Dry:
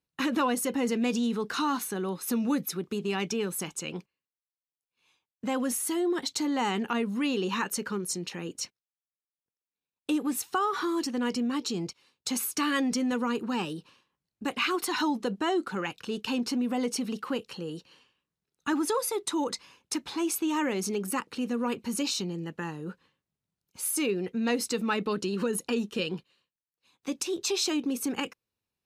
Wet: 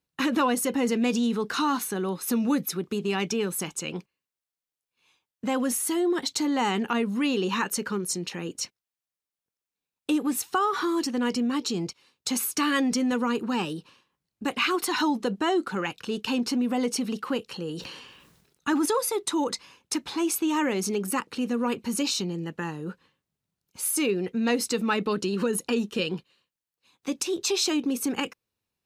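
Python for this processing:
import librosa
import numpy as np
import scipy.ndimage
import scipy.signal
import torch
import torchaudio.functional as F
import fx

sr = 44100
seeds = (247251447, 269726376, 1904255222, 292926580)

y = fx.sustainer(x, sr, db_per_s=45.0, at=(17.48, 18.86))
y = y * librosa.db_to_amplitude(3.0)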